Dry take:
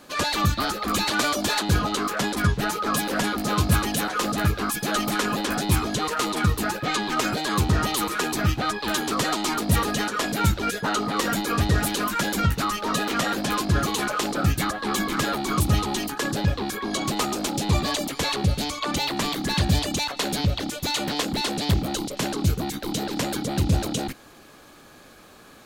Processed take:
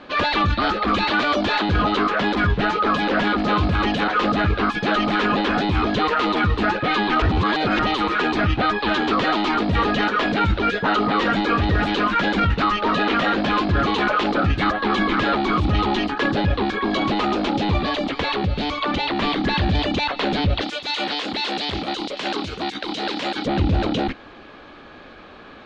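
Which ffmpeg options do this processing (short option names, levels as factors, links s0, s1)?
-filter_complex "[0:a]asettb=1/sr,asplit=3[s0][s1][s2];[s0]atrim=end=17.774[s3];[s1]atrim=start=17.77:end=19.22,asetpts=PTS-STARTPTS,afade=t=in:d=0.004:c=qsin,afade=t=out:st=1.446:d=0.004:c=qsin,acompressor=threshold=0.0562:ratio=3:attack=3.2:release=140:knee=1:detection=peak[s4];[s2]atrim=start=19.216[s5];[s3][s4]acrossfade=d=0.004:c1=hsin:c2=qsin[s6];[s6][s5]acrossfade=d=0.004:c1=qsin:c2=hsin,asettb=1/sr,asplit=3[s7][s8][s9];[s7]atrim=end=20.614[s10];[s8]atrim=start=20.61:end=23.46,asetpts=PTS-STARTPTS,afade=t=in:d=0.004:c=qsin,afade=t=out:st=2.846:d=0.004:c=qsin,aemphasis=mode=production:type=riaa[s11];[s9]atrim=start=23.456[s12];[s10][s11]acrossfade=d=0.004:c1=hsin:c2=qsin[s13];[s13][s12]acrossfade=d=0.004:c1=qsin:c2=hsin,asplit=3[s14][s15][s16];[s14]atrim=end=7.222[s17];[s15]atrim=start=7.218:end=7.792,asetpts=PTS-STARTPTS,areverse[s18];[s16]atrim=start=7.788[s19];[s17][s18]acrossfade=d=0.004:c1=hsin:c2=hsin[s20];[s20][s19]acrossfade=d=0.004:c1=hsin:c2=hsin,alimiter=limit=0.133:level=0:latency=1:release=11,lowpass=f=3600:w=0.5412,lowpass=f=3600:w=1.3066,equalizer=f=140:t=o:w=0.59:g=-6.5,volume=2.37"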